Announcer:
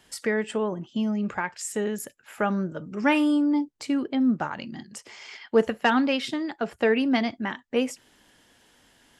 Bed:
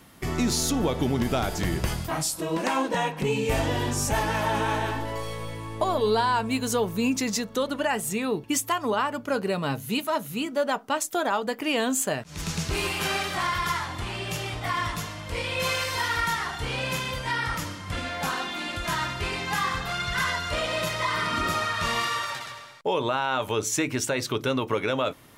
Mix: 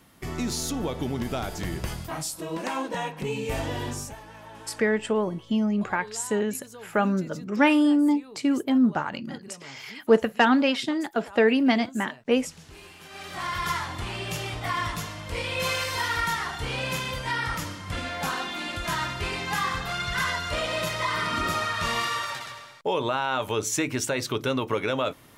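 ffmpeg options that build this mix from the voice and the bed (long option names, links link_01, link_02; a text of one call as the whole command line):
ffmpeg -i stem1.wav -i stem2.wav -filter_complex "[0:a]adelay=4550,volume=2dB[link_01];[1:a]volume=14.5dB,afade=type=out:start_time=3.91:duration=0.25:silence=0.177828,afade=type=in:start_time=13.1:duration=0.61:silence=0.112202[link_02];[link_01][link_02]amix=inputs=2:normalize=0" out.wav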